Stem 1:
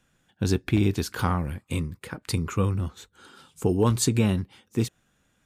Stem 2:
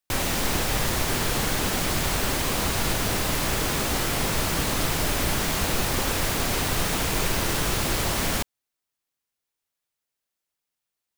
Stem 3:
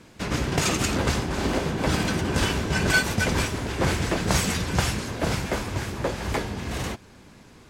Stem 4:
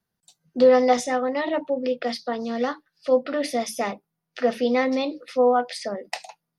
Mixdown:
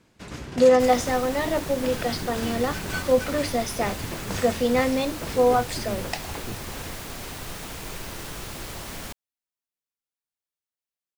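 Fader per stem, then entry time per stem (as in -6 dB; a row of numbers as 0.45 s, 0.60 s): -13.5 dB, -11.0 dB, -11.0 dB, -0.5 dB; 1.70 s, 0.70 s, 0.00 s, 0.00 s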